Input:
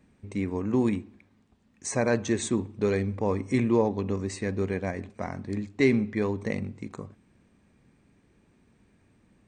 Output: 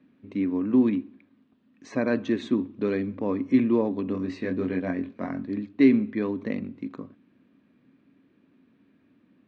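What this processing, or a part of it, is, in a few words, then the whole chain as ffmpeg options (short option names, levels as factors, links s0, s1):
kitchen radio: -filter_complex "[0:a]asettb=1/sr,asplit=3[s0][s1][s2];[s0]atrim=end=4.124[s3];[s1]atrim=start=4.12:end=5.45,asetpts=PTS-STARTPTS,afade=t=in:d=0.004:c=qsin,afade=t=out:st=1.326:d=0.004:c=qsin,asplit=2[s4][s5];[s5]adelay=22,volume=0.668[s6];[s4][s6]amix=inputs=2:normalize=0,atrim=end_sample=58653[s7];[s2]atrim=start=5.446[s8];[s3][s7]acrossfade=d=0.004:c1=hsin:c2=qsin[s9];[s9][s8]acrossfade=d=0.004:c1=qsin:c2=hsin,highpass=180,equalizer=f=270:t=q:w=4:g=10,equalizer=f=440:t=q:w=4:g=-3,equalizer=f=820:t=q:w=4:g=-8,equalizer=f=2100:t=q:w=4:g=-4,lowpass=f=3800:w=0.5412,lowpass=f=3800:w=1.3066"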